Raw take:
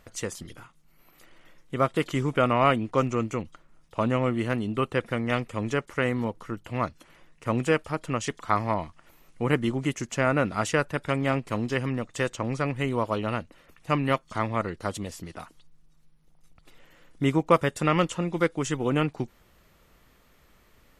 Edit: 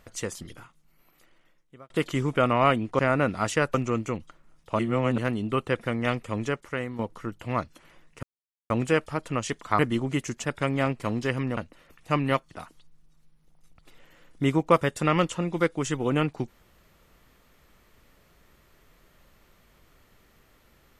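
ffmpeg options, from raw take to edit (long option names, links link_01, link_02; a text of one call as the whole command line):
ffmpeg -i in.wav -filter_complex "[0:a]asplit=12[link_01][link_02][link_03][link_04][link_05][link_06][link_07][link_08][link_09][link_10][link_11][link_12];[link_01]atrim=end=1.9,asetpts=PTS-STARTPTS,afade=type=out:start_time=0.55:duration=1.35[link_13];[link_02]atrim=start=1.9:end=2.992,asetpts=PTS-STARTPTS,afade=type=in:duration=0.004:curve=hsin[link_14];[link_03]atrim=start=10.158:end=10.912[link_15];[link_04]atrim=start=2.988:end=4.042[link_16];[link_05]atrim=start=4.038:end=4.432,asetpts=PTS-STARTPTS,areverse[link_17];[link_06]atrim=start=4.428:end=6.24,asetpts=PTS-STARTPTS,afade=type=out:start_time=1.182:duration=0.63:silence=0.316228[link_18];[link_07]atrim=start=6.24:end=7.48,asetpts=PTS-STARTPTS,afade=type=in:duration=0.004:curve=hsin:silence=0.316228,afade=type=out:start_time=1.236:duration=0.004:curve=hsin,apad=pad_dur=0.47[link_19];[link_08]atrim=start=7.48:end=8.572,asetpts=PTS-STARTPTS,afade=type=in:duration=0.004:curve=hsin[link_20];[link_09]atrim=start=9.508:end=10.162[link_21];[link_10]atrim=start=10.908:end=12.042[link_22];[link_11]atrim=start=13.358:end=14.302[link_23];[link_12]atrim=start=15.308[link_24];[link_13][link_14]concat=n=2:v=0:a=1[link_25];[link_25][link_15]acrossfade=duration=0.004:curve1=hsin:curve2=hsin[link_26];[link_26][link_16]acrossfade=duration=0.004:curve1=hsin:curve2=hsin[link_27];[link_27][link_17]acrossfade=duration=0.004:curve1=hsin:curve2=hsin[link_28];[link_18][link_19][link_20]concat=n=3:v=0:a=1[link_29];[link_28][link_29]acrossfade=duration=0.004:curve1=hsin:curve2=hsin[link_30];[link_30][link_21]acrossfade=duration=0.004:curve1=hsin:curve2=hsin[link_31];[link_31][link_22]acrossfade=duration=0.004:curve1=hsin:curve2=hsin[link_32];[link_32][link_23]acrossfade=duration=0.004:curve1=hsin:curve2=hsin[link_33];[link_33][link_24]acrossfade=duration=0.004:curve1=hsin:curve2=hsin" out.wav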